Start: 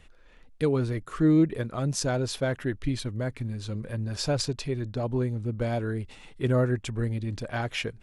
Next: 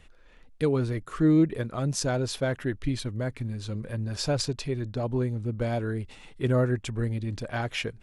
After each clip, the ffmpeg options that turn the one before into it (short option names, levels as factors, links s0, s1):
-af anull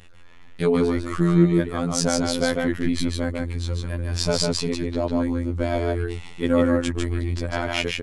-af "afftfilt=real='hypot(re,im)*cos(PI*b)':imag='0':win_size=2048:overlap=0.75,aecho=1:1:150:0.708,volume=2.82"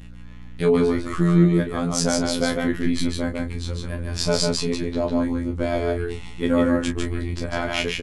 -filter_complex "[0:a]aeval=exprs='val(0)+0.01*(sin(2*PI*60*n/s)+sin(2*PI*2*60*n/s)/2+sin(2*PI*3*60*n/s)/3+sin(2*PI*4*60*n/s)/4+sin(2*PI*5*60*n/s)/5)':c=same,asplit=2[s0][s1];[s1]adelay=28,volume=0.398[s2];[s0][s2]amix=inputs=2:normalize=0"